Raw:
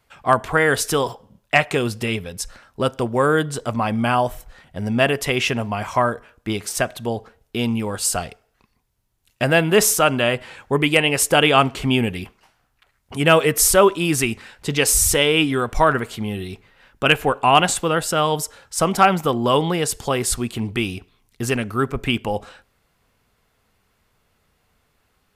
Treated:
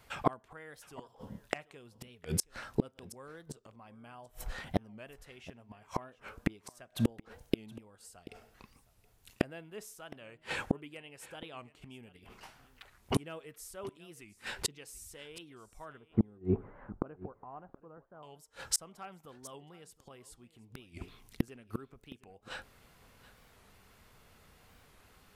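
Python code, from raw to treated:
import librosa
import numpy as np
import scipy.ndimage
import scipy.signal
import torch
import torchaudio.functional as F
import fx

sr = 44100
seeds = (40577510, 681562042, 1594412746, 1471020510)

y = fx.gate_flip(x, sr, shuts_db=-19.0, range_db=-37)
y = fx.lowpass(y, sr, hz=1200.0, slope=24, at=(15.97, 18.24))
y = fx.dynamic_eq(y, sr, hz=320.0, q=0.94, threshold_db=-53.0, ratio=4.0, max_db=5)
y = y + 10.0 ** (-19.0 / 20.0) * np.pad(y, (int(723 * sr / 1000.0), 0))[:len(y)]
y = fx.record_warp(y, sr, rpm=45.0, depth_cents=160.0)
y = F.gain(torch.from_numpy(y), 4.0).numpy()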